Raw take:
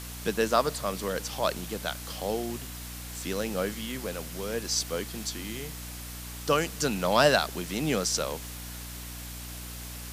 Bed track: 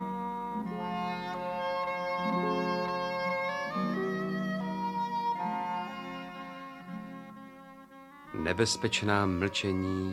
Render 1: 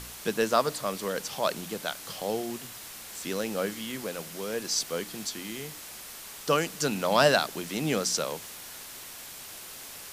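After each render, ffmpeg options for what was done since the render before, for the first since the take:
-af "bandreject=f=60:t=h:w=4,bandreject=f=120:t=h:w=4,bandreject=f=180:t=h:w=4,bandreject=f=240:t=h:w=4,bandreject=f=300:t=h:w=4"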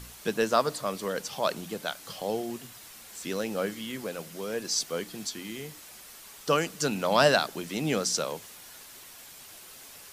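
-af "afftdn=nr=6:nf=-44"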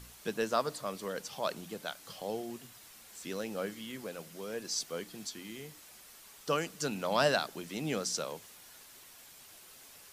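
-af "volume=-6.5dB"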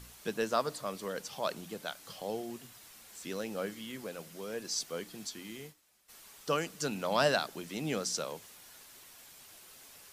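-filter_complex "[0:a]asplit=3[a][b][c];[a]afade=t=out:st=5.56:d=0.02[d];[b]agate=range=-33dB:threshold=-45dB:ratio=3:release=100:detection=peak,afade=t=in:st=5.56:d=0.02,afade=t=out:st=6.08:d=0.02[e];[c]afade=t=in:st=6.08:d=0.02[f];[d][e][f]amix=inputs=3:normalize=0"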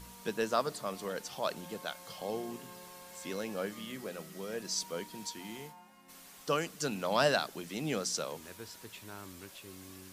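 -filter_complex "[1:a]volume=-20.5dB[a];[0:a][a]amix=inputs=2:normalize=0"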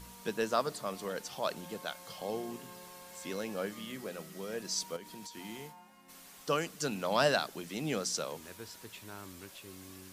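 -filter_complex "[0:a]asettb=1/sr,asplit=3[a][b][c];[a]atrim=end=4.964[d];[b]atrim=start=4.96:end=5.37,asetpts=PTS-STARTPTS,afade=t=in:d=0.004:c=qsin,afade=t=out:st=0.406:d=0.004:c=qsin,acompressor=threshold=-42dB:ratio=12:attack=3.2:release=140:knee=1:detection=peak[e];[c]atrim=start=5.366[f];[d][e]acrossfade=d=0.004:c1=hsin:c2=qsin[g];[g][f]acrossfade=d=0.004:c1=qsin:c2=hsin"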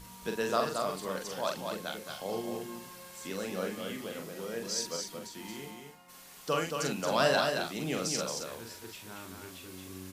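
-filter_complex "[0:a]asplit=2[a][b];[b]adelay=43,volume=-4.5dB[c];[a][c]amix=inputs=2:normalize=0,aecho=1:1:224:0.562"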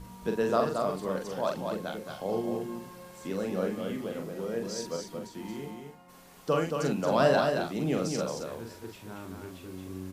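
-af "tiltshelf=f=1.3k:g=6.5"

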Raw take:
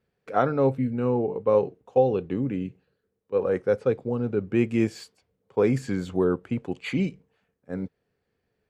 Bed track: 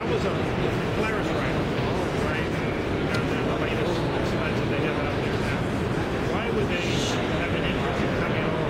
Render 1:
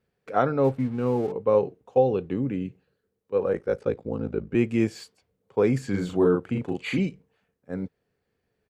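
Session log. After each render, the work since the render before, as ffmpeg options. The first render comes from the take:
-filter_complex "[0:a]asettb=1/sr,asplit=3[a][b][c];[a]atrim=end=0.644[d];[b]atrim=start=0.64:end=1.32,asetpts=PTS-STARTPTS,afade=t=in:d=0.004:c=qsin,afade=t=out:st=0.676:d=0.004:c=qsin,aeval=exprs='sgn(val(0))*max(abs(val(0))-0.00501,0)':c=same[e];[c]atrim=start=1.316[f];[d][e]acrossfade=d=0.004:c1=hsin:c2=qsin[g];[g][f]acrossfade=d=0.004:c1=qsin:c2=hsin,asettb=1/sr,asplit=3[h][i][j];[h]atrim=end=3.524[k];[i]atrim=start=3.52:end=4.55,asetpts=PTS-STARTPTS,afade=t=in:d=0.004:c=qsin,afade=t=out:st=1.026:d=0.004:c=qsin,aeval=exprs='val(0)*sin(2*PI*27*n/s)':c=same[l];[j]atrim=start=4.546[m];[k][l]acrossfade=d=0.004:c1=hsin:c2=qsin[n];[n][m]acrossfade=d=0.004:c1=qsin:c2=hsin,asplit=3[o][p][q];[o]afade=t=out:st=5.93:d=0.02[r];[p]asplit=2[s][t];[t]adelay=40,volume=-2dB[u];[s][u]amix=inputs=2:normalize=0,afade=t=in:st=5.93:d=0.02,afade=t=out:st=6.98:d=0.02[v];[q]afade=t=in:st=6.98:d=0.02[w];[r][v][w]amix=inputs=3:normalize=0"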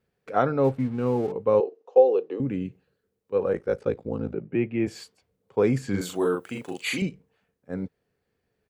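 -filter_complex "[0:a]asettb=1/sr,asplit=3[a][b][c];[a]atrim=end=1.604[d];[b]atrim=start=1.6:end=2.4,asetpts=PTS-STARTPTS,afade=t=in:d=0.004:c=qsin,afade=t=out:st=0.796:d=0.004:c=qsin,highpass=f=350:w=0.5412,highpass=f=350:w=1.3066,equalizer=f=470:t=q:w=4:g=7,equalizer=f=1.5k:t=q:w=4:g=-6,equalizer=f=2.2k:t=q:w=4:g=-7,equalizer=f=3.5k:t=q:w=4:g=-5,lowpass=f=5.9k:w=0.5412,lowpass=f=5.9k:w=1.3066[e];[c]atrim=start=2.396[f];[d][e]acrossfade=d=0.004:c1=hsin:c2=qsin[g];[g][f]acrossfade=d=0.004:c1=qsin:c2=hsin,asplit=3[h][i][j];[h]afade=t=out:st=4.33:d=0.02[k];[i]highpass=f=120:w=0.5412,highpass=f=120:w=1.3066,equalizer=f=230:t=q:w=4:g=-5,equalizer=f=460:t=q:w=4:g=-5,equalizer=f=1.1k:t=q:w=4:g=-8,equalizer=f=1.5k:t=q:w=4:g=-6,lowpass=f=2.6k:w=0.5412,lowpass=f=2.6k:w=1.3066,afade=t=in:st=4.33:d=0.02,afade=t=out:st=4.86:d=0.02[l];[j]afade=t=in:st=4.86:d=0.02[m];[k][l][m]amix=inputs=3:normalize=0,asettb=1/sr,asplit=3[n][o][p];[n]atrim=end=6.014[q];[o]atrim=start=6.01:end=7.02,asetpts=PTS-STARTPTS,afade=t=in:d=0.004:c=qsin,afade=t=out:st=1.006:d=0.004:c=qsin,aemphasis=mode=production:type=riaa[r];[p]atrim=start=7.016[s];[q][r]acrossfade=d=0.004:c1=hsin:c2=qsin[t];[t][s]acrossfade=d=0.004:c1=qsin:c2=hsin"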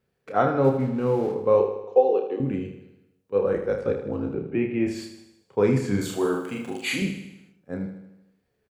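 -filter_complex "[0:a]asplit=2[a][b];[b]adelay=30,volume=-6dB[c];[a][c]amix=inputs=2:normalize=0,aecho=1:1:78|156|234|312|390|468|546:0.355|0.199|0.111|0.0623|0.0349|0.0195|0.0109"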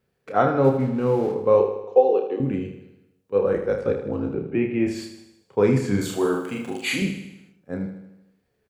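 -af "volume=2dB"

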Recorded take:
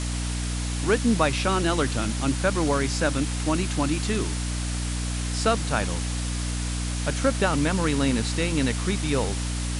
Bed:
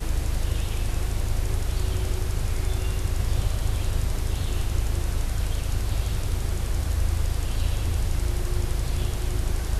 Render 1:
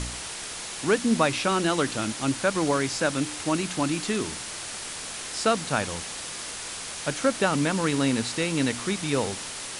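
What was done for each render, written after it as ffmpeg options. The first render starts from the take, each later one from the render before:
-af "bandreject=f=60:t=h:w=4,bandreject=f=120:t=h:w=4,bandreject=f=180:t=h:w=4,bandreject=f=240:t=h:w=4,bandreject=f=300:t=h:w=4"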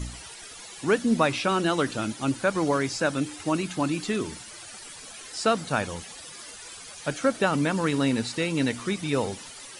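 -af "afftdn=nr=13:nf=-36"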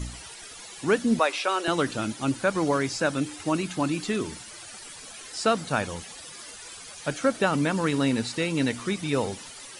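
-filter_complex "[0:a]asettb=1/sr,asplit=3[a][b][c];[a]atrim=end=1.194[d];[b]atrim=start=1.19:end=1.68,asetpts=PTS-STARTPTS,afade=t=in:d=0.004:c=qsin,afade=t=out:st=0.486:d=0.004:c=qsin,highpass=f=410:w=0.5412,highpass=f=410:w=1.3066[e];[c]atrim=start=1.676[f];[d][e]acrossfade=d=0.004:c1=hsin:c2=qsin[g];[g][f]acrossfade=d=0.004:c1=qsin:c2=hsin"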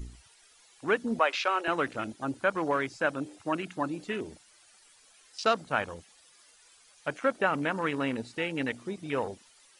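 -af "afwtdn=0.02,equalizer=f=140:w=0.4:g=-10.5"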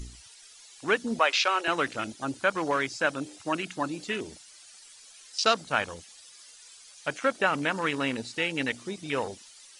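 -af "equalizer=f=5.7k:w=0.48:g=10.5"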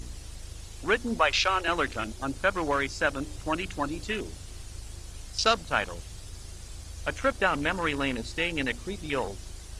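-filter_complex "[1:a]volume=-17dB[a];[0:a][a]amix=inputs=2:normalize=0"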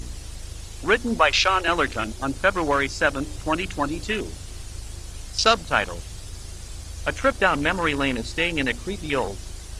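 -af "volume=5.5dB"

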